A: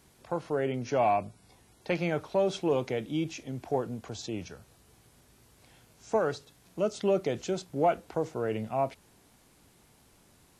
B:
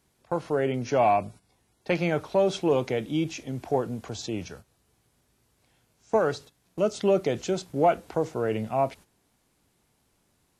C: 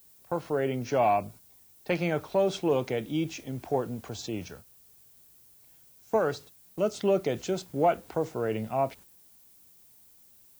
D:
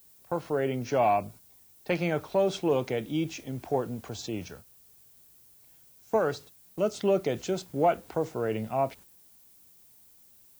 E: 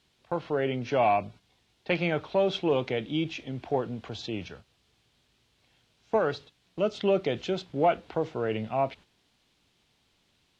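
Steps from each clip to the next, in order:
gate -48 dBFS, range -12 dB; gain +4 dB
added noise violet -55 dBFS; gain -2.5 dB
nothing audible
synth low-pass 3400 Hz, resonance Q 1.9

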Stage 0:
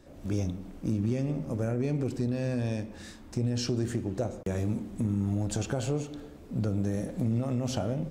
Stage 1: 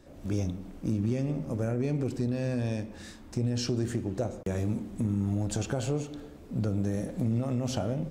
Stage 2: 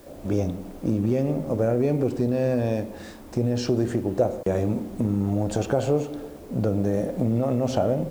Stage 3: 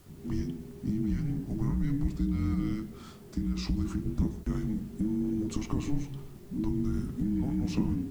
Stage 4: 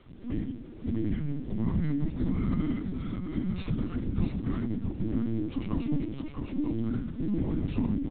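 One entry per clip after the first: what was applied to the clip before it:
nothing audible
high shelf 5500 Hz -5.5 dB; in parallel at -10 dB: requantised 8-bit, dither triangular; on the sum: bell 580 Hz +9.5 dB 1.9 oct
frequency shift -430 Hz; flange 0.38 Hz, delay 4.1 ms, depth 1 ms, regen -65%; gain -2 dB
CVSD 64 kbps; echo 0.652 s -5 dB; LPC vocoder at 8 kHz pitch kept

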